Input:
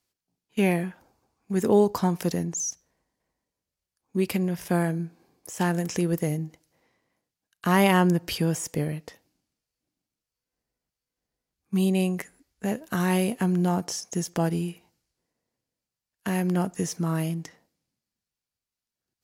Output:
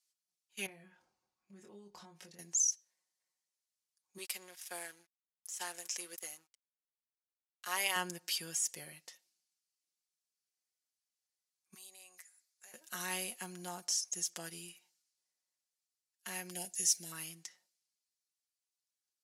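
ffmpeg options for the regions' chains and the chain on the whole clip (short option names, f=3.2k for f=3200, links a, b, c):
-filter_complex "[0:a]asettb=1/sr,asplit=3[a][b][c];[a]atrim=end=0.664[d];[b]atrim=start=0.66:end=2.39,asetpts=PTS-STARTPTS,afade=t=in:d=0.004:c=qsin,afade=t=out:st=1.726:d=0.004:c=qsin,aemphasis=mode=reproduction:type=riaa,acompressor=threshold=-32dB:ratio=4:attack=3.2:release=140:knee=1:detection=peak,asplit=2[e][f];[f]adelay=25,volume=-5dB[g];[e][g]amix=inputs=2:normalize=0,atrim=end_sample=76293[h];[c]atrim=start=2.386[i];[d][h]acrossfade=d=0.004:c1=hsin:c2=qsin[j];[j][i]acrossfade=d=0.004:c1=qsin:c2=hsin,asettb=1/sr,asplit=3[k][l][m];[k]atrim=end=4.184[n];[l]atrim=start=4.18:end=7.96,asetpts=PTS-STARTPTS,afade=t=in:d=0.004:c=qsin,afade=t=out:st=3.776:d=0.004:c=qsin,highpass=420,aeval=exprs='sgn(val(0))*max(abs(val(0))-0.00501,0)':c=same[o];[m]atrim=start=7.956[p];[n][o]acrossfade=d=0.004:c1=hsin:c2=qsin[q];[q][p]acrossfade=d=0.004:c1=qsin:c2=hsin,asettb=1/sr,asplit=3[r][s][t];[r]atrim=end=11.744[u];[s]atrim=start=11.74:end=12.74,asetpts=PTS-STARTPTS,afade=t=in:d=0.004:c=qsin,afade=t=out:st=0.996:d=0.004:c=qsin,highpass=750,acompressor=threshold=-48dB:ratio=2.5:attack=3.2:release=140:knee=1:detection=peak,equalizer=f=3k:t=o:w=0.39:g=-6.5[v];[t]atrim=start=12.736[w];[u][v]acrossfade=d=0.004:c1=hsin:c2=qsin[x];[x][w]acrossfade=d=0.004:c1=qsin:c2=hsin,asettb=1/sr,asplit=3[y][z][aa];[y]atrim=end=16.504[ab];[z]atrim=start=16.5:end=17.12,asetpts=PTS-STARTPTS,afade=t=in:d=0.004:c=qsin,afade=t=out:st=0.616:d=0.004:c=qsin,asuperstop=centerf=1200:order=4:qfactor=1.3,highshelf=f=4.3k:g=8.5[ac];[aa]atrim=start=17.116[ad];[ab][ac]acrossfade=d=0.004:c1=hsin:c2=qsin[ae];[ae][ad]acrossfade=d=0.004:c1=qsin:c2=hsin,lowpass=8.9k,aderivative,aecho=1:1:5.5:0.65"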